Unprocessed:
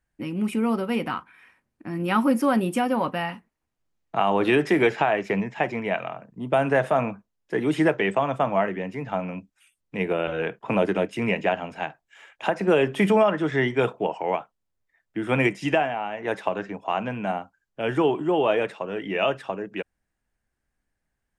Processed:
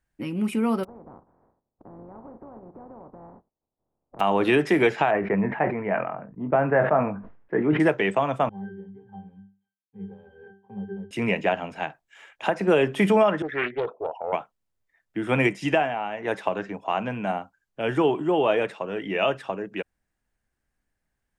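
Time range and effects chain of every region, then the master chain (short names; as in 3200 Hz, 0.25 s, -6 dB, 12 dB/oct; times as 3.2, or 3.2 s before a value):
0.83–4.19 spectral contrast lowered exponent 0.31 + inverse Chebyshev low-pass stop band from 2900 Hz, stop band 60 dB + compressor, threshold -42 dBFS
5.11–7.8 LPF 1900 Hz 24 dB/oct + doubler 20 ms -10 dB + sustainer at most 79 dB/s
8.49–11.11 companded quantiser 4-bit + tape spacing loss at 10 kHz 38 dB + octave resonator G, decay 0.34 s
13.42–14.33 formant sharpening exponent 2 + HPF 670 Hz 6 dB/oct + Doppler distortion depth 0.3 ms
whole clip: dry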